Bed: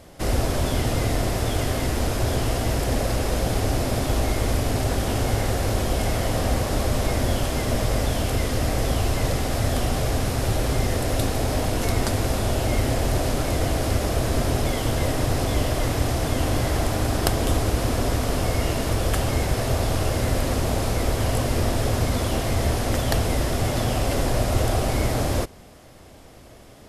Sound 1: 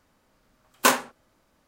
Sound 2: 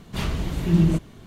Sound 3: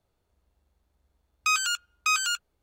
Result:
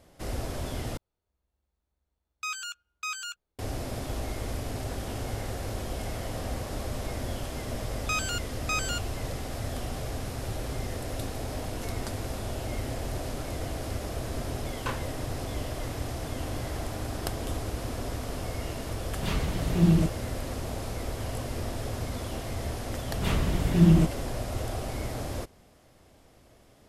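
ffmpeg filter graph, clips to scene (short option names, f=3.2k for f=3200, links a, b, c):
-filter_complex "[3:a]asplit=2[a][b];[2:a]asplit=2[c][d];[0:a]volume=-11dB[e];[1:a]lowpass=3.5k[f];[d]equalizer=f=4.8k:t=o:w=0.77:g=-4[g];[e]asplit=2[h][i];[h]atrim=end=0.974[j];[a]atrim=end=2.62,asetpts=PTS-STARTPTS,volume=-10dB[k];[i]atrim=start=3.586[l];[b]atrim=end=2.62,asetpts=PTS-STARTPTS,volume=-6dB,afade=t=in:d=0.004:c=hsin,afade=t=out:st=2.616:d=0.004:c=hsin,adelay=6630[m];[f]atrim=end=1.67,asetpts=PTS-STARTPTS,volume=-14.5dB,afade=t=in:d=0.004:c=hsin,afade=t=out:st=1.666:d=0.004:c=hsin,adelay=14010[n];[c]atrim=end=1.26,asetpts=PTS-STARTPTS,volume=-3dB,afade=t=in:d=0.004:c=hsin,afade=t=out:st=1.256:d=0.004:c=hsin,adelay=19090[o];[g]atrim=end=1.26,asetpts=PTS-STARTPTS,volume=-0.5dB,afade=t=in:d=0.004:c=hsin,afade=t=out:st=1.256:d=0.004:c=hsin,adelay=1017828S[p];[j][k]acrossfade=d=0.004:c1=hsin:c2=hsin[q];[q][l]acrossfade=d=0.004:c1=hsin:c2=hsin[r];[r][m][n][o][p]amix=inputs=5:normalize=0"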